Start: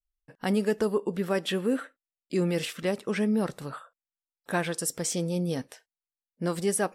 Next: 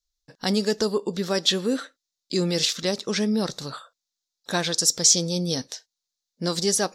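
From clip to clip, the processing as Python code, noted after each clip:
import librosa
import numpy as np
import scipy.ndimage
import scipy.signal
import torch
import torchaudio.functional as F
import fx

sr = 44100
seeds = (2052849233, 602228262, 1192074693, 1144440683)

y = fx.band_shelf(x, sr, hz=5000.0, db=16.0, octaves=1.2)
y = y * librosa.db_to_amplitude(2.0)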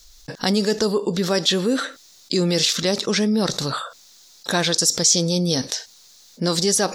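y = fx.env_flatten(x, sr, amount_pct=50)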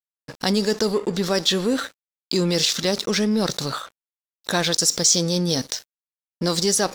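y = np.sign(x) * np.maximum(np.abs(x) - 10.0 ** (-35.5 / 20.0), 0.0)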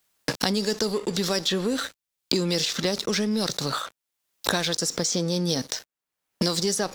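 y = fx.band_squash(x, sr, depth_pct=100)
y = y * librosa.db_to_amplitude(-4.5)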